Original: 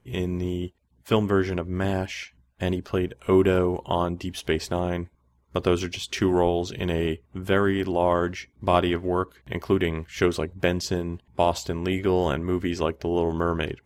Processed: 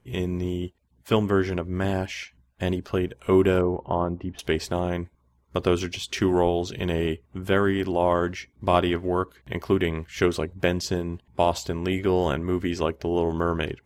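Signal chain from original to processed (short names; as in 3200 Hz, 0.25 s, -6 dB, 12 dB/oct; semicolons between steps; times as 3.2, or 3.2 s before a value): 3.61–4.39 LPF 1300 Hz 12 dB/oct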